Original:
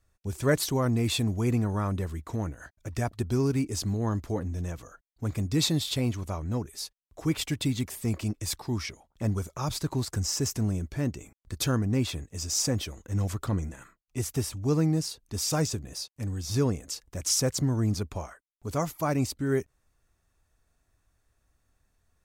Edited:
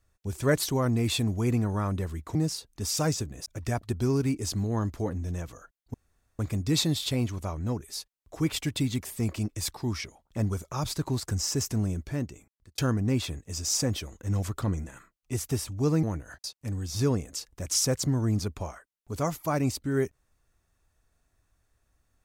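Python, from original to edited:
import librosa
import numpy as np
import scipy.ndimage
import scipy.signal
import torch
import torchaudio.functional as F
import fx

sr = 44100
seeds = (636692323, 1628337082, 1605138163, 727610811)

y = fx.edit(x, sr, fx.swap(start_s=2.35, length_s=0.41, other_s=14.88, other_length_s=1.11),
    fx.insert_room_tone(at_s=5.24, length_s=0.45),
    fx.fade_out_span(start_s=10.88, length_s=0.75), tone=tone)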